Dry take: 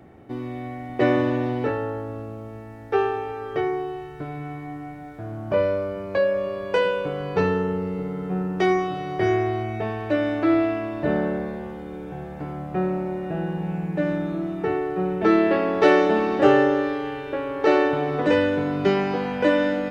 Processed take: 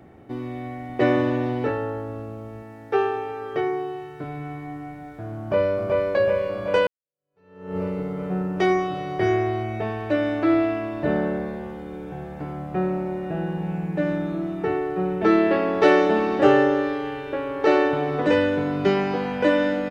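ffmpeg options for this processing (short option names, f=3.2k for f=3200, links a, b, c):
-filter_complex "[0:a]asettb=1/sr,asplit=3[a][b][c];[a]atrim=end=2.624[d];[b]atrim=start=2.62:end=4.24,asetpts=PTS-STARTPTS,afade=t=in:d=0.004:c=qsin,afade=t=out:st=1.616:d=0.004:c=qsin,highpass=120[e];[c]atrim=start=4.236[f];[d][e]acrossfade=d=0.004:c1=hsin:c2=qsin[g];[g][f]acrossfade=d=0.004:c1=qsin:c2=hsin,asplit=2[h][i];[i]afade=t=in:st=5.39:d=0.01,afade=t=out:st=6.11:d=0.01,aecho=0:1:380|760|1140|1520|1900|2280|2660|3040|3420|3800|4180|4560:0.794328|0.55603|0.389221|0.272455|0.190718|0.133503|0.0934519|0.0654163|0.0457914|0.032054|0.0224378|0.0157065[j];[h][j]amix=inputs=2:normalize=0,asplit=2[k][l];[k]atrim=end=6.87,asetpts=PTS-STARTPTS,afade=t=out:st=6.866:d=0.004:c=hsin[m];[l]atrim=start=6.87,asetpts=PTS-STARTPTS,afade=t=in:d=0.9:c=exp[n];[m][n]concat=n=2:v=0:a=1"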